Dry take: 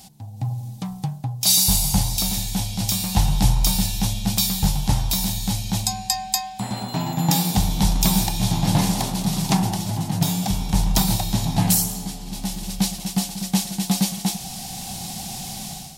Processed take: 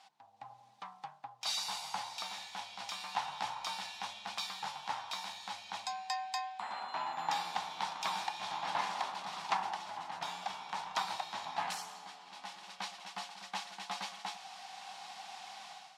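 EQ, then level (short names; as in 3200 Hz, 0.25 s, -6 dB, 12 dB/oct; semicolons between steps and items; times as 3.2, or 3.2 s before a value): ladder band-pass 1400 Hz, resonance 35%; +6.0 dB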